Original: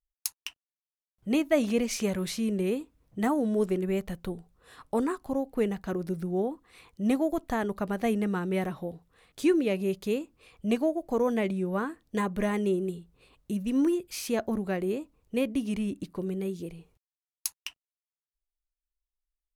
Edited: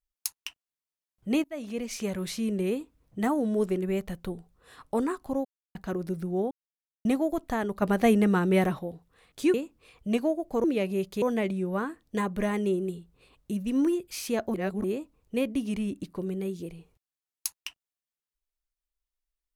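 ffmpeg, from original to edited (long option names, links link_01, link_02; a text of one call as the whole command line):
ffmpeg -i in.wav -filter_complex "[0:a]asplit=13[link_01][link_02][link_03][link_04][link_05][link_06][link_07][link_08][link_09][link_10][link_11][link_12][link_13];[link_01]atrim=end=1.44,asetpts=PTS-STARTPTS,afade=type=out:start_time=1.436:duration=0.004:curve=hsin:silence=0.0891251[link_14];[link_02]atrim=start=1.44:end=5.45,asetpts=PTS-STARTPTS,afade=type=in:duration=1.27:curve=qsin:silence=0.0891251,afade=type=out:start_time=4.006:duration=0.004:curve=hsin[link_15];[link_03]atrim=start=5.45:end=5.75,asetpts=PTS-STARTPTS,volume=0[link_16];[link_04]atrim=start=5.75:end=6.51,asetpts=PTS-STARTPTS,afade=type=in:duration=0.004:curve=hsin,afade=type=out:start_time=0.756:duration=0.004:curve=hsin[link_17];[link_05]atrim=start=6.51:end=7.05,asetpts=PTS-STARTPTS,volume=0[link_18];[link_06]atrim=start=7.05:end=7.822,asetpts=PTS-STARTPTS,afade=type=in:duration=0.004:curve=hsin[link_19];[link_07]atrim=start=7.818:end=8.792,asetpts=PTS-STARTPTS,volume=6dB[link_20];[link_08]atrim=start=8.788:end=9.542[link_21];[link_09]atrim=start=10.118:end=11.222[link_22];[link_10]atrim=start=9.538:end=10.122[link_23];[link_11]atrim=start=11.218:end=14.542[link_24];[link_12]atrim=start=14.538:end=14.842,asetpts=PTS-STARTPTS,areverse[link_25];[link_13]atrim=start=14.838[link_26];[link_14][link_15][link_16][link_17][link_18][link_19]concat=n=6:v=0:a=1[link_27];[link_27][link_20]acrossfade=duration=0.004:curve1=hsin:curve2=hsin[link_28];[link_28][link_21]acrossfade=duration=0.004:curve1=hsin:curve2=hsin[link_29];[link_29][link_22]acrossfade=duration=0.004:curve1=hsin:curve2=hsin[link_30];[link_30][link_23]acrossfade=duration=0.004:curve1=hsin:curve2=hsin[link_31];[link_31][link_24]acrossfade=duration=0.004:curve1=hsin:curve2=hsin[link_32];[link_32][link_25]acrossfade=duration=0.004:curve1=hsin:curve2=hsin[link_33];[link_33][link_26]acrossfade=duration=0.004:curve1=hsin:curve2=hsin" out.wav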